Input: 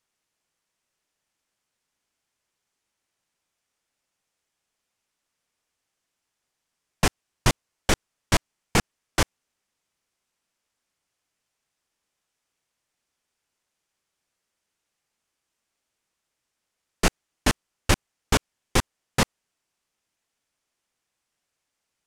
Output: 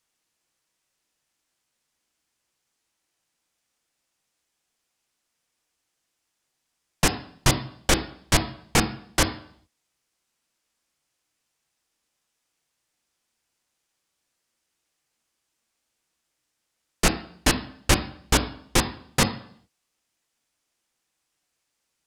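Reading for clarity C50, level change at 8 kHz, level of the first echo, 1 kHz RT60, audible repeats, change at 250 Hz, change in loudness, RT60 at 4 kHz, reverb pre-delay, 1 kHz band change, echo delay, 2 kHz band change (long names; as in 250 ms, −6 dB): 16.5 dB, +4.0 dB, no echo audible, 0.55 s, no echo audible, +2.0 dB, +2.5 dB, 0.60 s, 3 ms, +1.5 dB, no echo audible, +1.5 dB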